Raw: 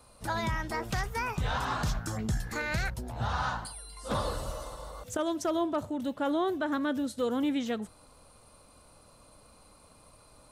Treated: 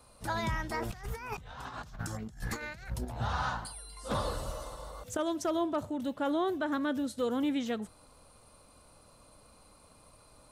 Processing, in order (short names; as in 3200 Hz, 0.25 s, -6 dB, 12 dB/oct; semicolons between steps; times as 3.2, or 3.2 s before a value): 0.8–3.05 negative-ratio compressor -37 dBFS, ratio -0.5; gain -1.5 dB